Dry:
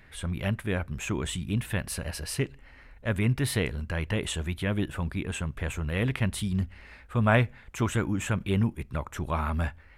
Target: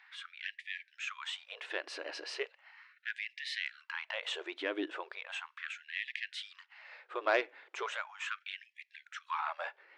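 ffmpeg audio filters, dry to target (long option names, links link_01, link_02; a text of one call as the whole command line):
ffmpeg -i in.wav -af "asoftclip=type=tanh:threshold=-17dB,lowpass=frequency=5200:width=0.5412,lowpass=frequency=5200:width=1.3066,afftfilt=real='re*gte(b*sr/1024,270*pow(1700/270,0.5+0.5*sin(2*PI*0.37*pts/sr)))':imag='im*gte(b*sr/1024,270*pow(1700/270,0.5+0.5*sin(2*PI*0.37*pts/sr)))':win_size=1024:overlap=0.75,volume=-2dB" out.wav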